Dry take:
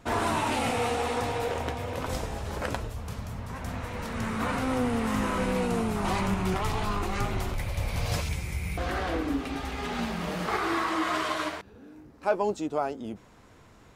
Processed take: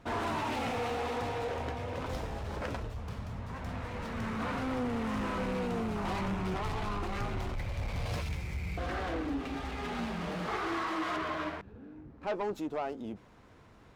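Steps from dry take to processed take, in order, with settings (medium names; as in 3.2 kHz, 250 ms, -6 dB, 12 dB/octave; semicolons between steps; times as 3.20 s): 11.16–12.27 s: tone controls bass +6 dB, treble -14 dB; saturation -25.5 dBFS, distortion -13 dB; distance through air 67 m; sliding maximum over 3 samples; trim -2.5 dB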